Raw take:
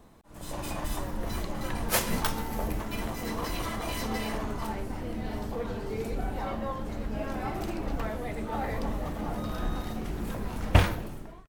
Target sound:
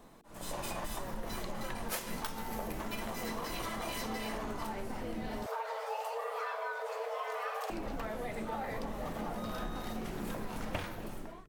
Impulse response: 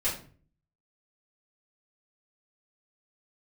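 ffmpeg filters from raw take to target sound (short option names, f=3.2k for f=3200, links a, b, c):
-filter_complex "[0:a]equalizer=f=62:w=0.9:g=-12.5,bandreject=f=50:t=h:w=6,bandreject=f=100:t=h:w=6,bandreject=f=150:t=h:w=6,bandreject=f=200:t=h:w=6,bandreject=f=250:t=h:w=6,bandreject=f=300:t=h:w=6,bandreject=f=350:t=h:w=6,bandreject=f=400:t=h:w=6,bandreject=f=450:t=h:w=6,acompressor=threshold=-35dB:ratio=10,asettb=1/sr,asplit=3[a][b][c];[a]atrim=end=5.464[d];[b]atrim=start=5.46:end=7.7,asetpts=PTS-STARTPTS,afade=t=in:d=0.004:c=qsin,afade=t=out:st=2.236:d=0.004:c=qsin,afreqshift=430[e];[c]atrim=start=7.696[f];[d][e]acrossfade=d=0.004:c1=hsin:c2=qsin[g];[g][f]acrossfade=d=0.004:c1=qsin:c2=hsin,volume=1dB"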